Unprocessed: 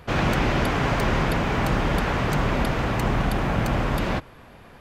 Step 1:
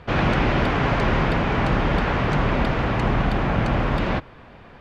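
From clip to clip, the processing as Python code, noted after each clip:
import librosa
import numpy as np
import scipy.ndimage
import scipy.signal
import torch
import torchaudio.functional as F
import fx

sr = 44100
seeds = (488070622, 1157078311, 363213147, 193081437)

y = scipy.signal.sosfilt(scipy.signal.butter(2, 4000.0, 'lowpass', fs=sr, output='sos'), x)
y = y * librosa.db_to_amplitude(2.0)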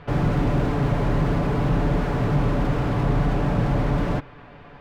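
y = fx.high_shelf(x, sr, hz=5700.0, db=-9.0)
y = y + 0.53 * np.pad(y, (int(6.9 * sr / 1000.0), 0))[:len(y)]
y = fx.slew_limit(y, sr, full_power_hz=36.0)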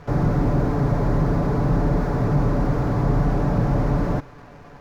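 y = scipy.ndimage.median_filter(x, 15, mode='constant')
y = y * librosa.db_to_amplitude(1.5)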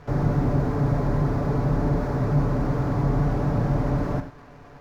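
y = fx.rev_gated(x, sr, seeds[0], gate_ms=120, shape='flat', drr_db=7.5)
y = y * librosa.db_to_amplitude(-3.5)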